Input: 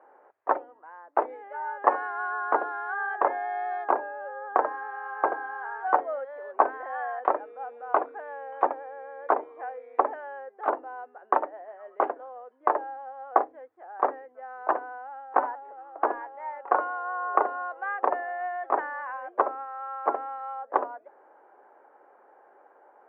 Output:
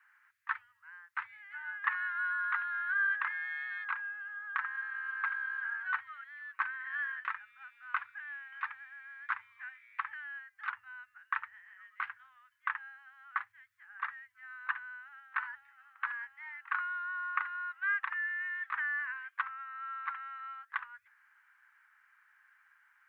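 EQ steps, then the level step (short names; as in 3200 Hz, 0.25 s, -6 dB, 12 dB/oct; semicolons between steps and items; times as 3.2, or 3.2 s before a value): inverse Chebyshev band-stop 220–700 Hz, stop band 60 dB; +8.0 dB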